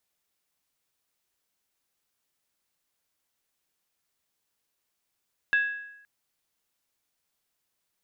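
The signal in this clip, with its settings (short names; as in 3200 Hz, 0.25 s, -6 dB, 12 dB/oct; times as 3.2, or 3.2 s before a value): skin hit length 0.52 s, lowest mode 1660 Hz, decay 0.85 s, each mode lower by 11.5 dB, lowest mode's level -18 dB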